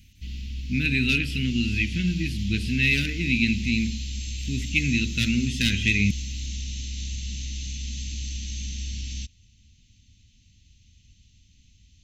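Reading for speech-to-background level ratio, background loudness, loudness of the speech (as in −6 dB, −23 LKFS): 9.0 dB, −33.5 LKFS, −24.5 LKFS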